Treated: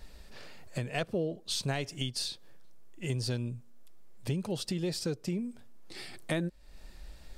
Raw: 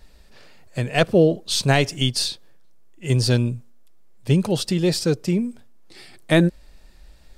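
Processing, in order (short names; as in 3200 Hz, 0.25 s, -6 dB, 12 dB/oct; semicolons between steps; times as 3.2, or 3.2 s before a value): compressor 3:1, threshold -35 dBFS, peak gain reduction 17.5 dB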